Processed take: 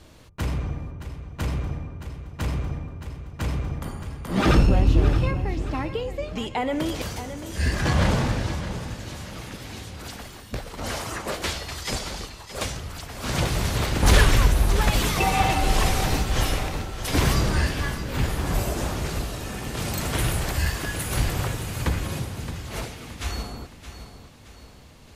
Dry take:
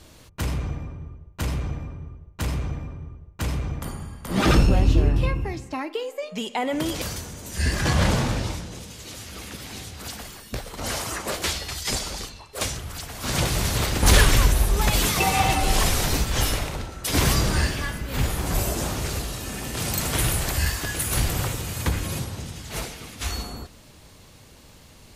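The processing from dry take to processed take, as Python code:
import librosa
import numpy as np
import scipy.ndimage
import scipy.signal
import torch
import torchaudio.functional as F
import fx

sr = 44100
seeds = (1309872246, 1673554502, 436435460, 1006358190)

p1 = fx.high_shelf(x, sr, hz=4500.0, db=-7.5)
y = p1 + fx.echo_feedback(p1, sr, ms=620, feedback_pct=43, wet_db=-11.5, dry=0)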